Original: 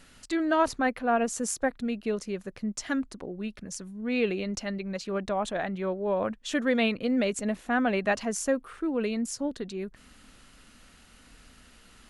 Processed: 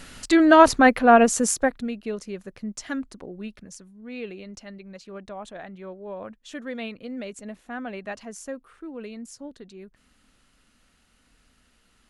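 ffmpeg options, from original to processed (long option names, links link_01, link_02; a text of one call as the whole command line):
ffmpeg -i in.wav -af "volume=11dB,afade=type=out:start_time=1.15:duration=0.79:silence=0.251189,afade=type=out:start_time=3.46:duration=0.43:silence=0.421697" out.wav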